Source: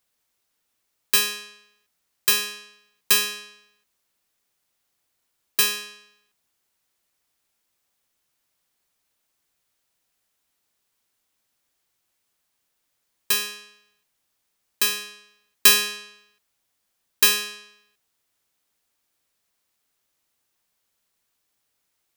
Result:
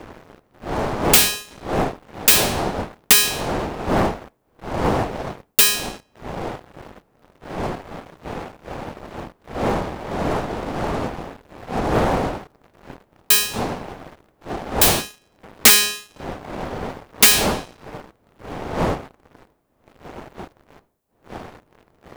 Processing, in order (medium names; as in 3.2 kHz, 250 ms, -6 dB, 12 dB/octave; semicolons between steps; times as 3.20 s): wind noise 640 Hz -32 dBFS; dynamic bell 780 Hz, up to +4 dB, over -47 dBFS, Q 3.4; waveshaping leveller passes 3; treble shelf 7.3 kHz +9.5 dB; integer overflow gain -5.5 dB; loudspeaker Doppler distortion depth 0.58 ms; trim -6.5 dB